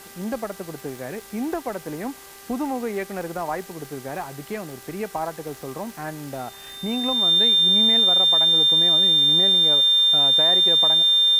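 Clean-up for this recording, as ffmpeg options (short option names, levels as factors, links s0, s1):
-af "adeclick=t=4,bandreject=f=394.6:t=h:w=4,bandreject=f=789.2:t=h:w=4,bandreject=f=1183.8:t=h:w=4,bandreject=f=1578.4:t=h:w=4,bandreject=f=1973:t=h:w=4,bandreject=f=3600:w=30,afwtdn=0.0063"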